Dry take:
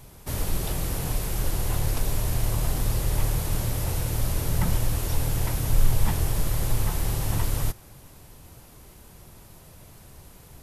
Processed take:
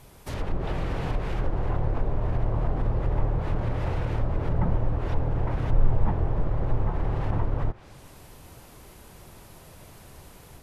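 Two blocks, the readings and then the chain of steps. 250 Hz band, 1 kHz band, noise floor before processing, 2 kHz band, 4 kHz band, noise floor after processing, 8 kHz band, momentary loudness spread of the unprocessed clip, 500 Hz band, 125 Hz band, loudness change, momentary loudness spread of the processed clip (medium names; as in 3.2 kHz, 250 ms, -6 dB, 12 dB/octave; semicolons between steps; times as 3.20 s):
+1.0 dB, +2.0 dB, -50 dBFS, -3.0 dB, under -10 dB, -50 dBFS, under -20 dB, 3 LU, +3.0 dB, -0.5 dB, -1.0 dB, 21 LU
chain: tone controls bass -4 dB, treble -4 dB; low-pass that closes with the level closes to 1 kHz, closed at -23 dBFS; level rider gain up to 3.5 dB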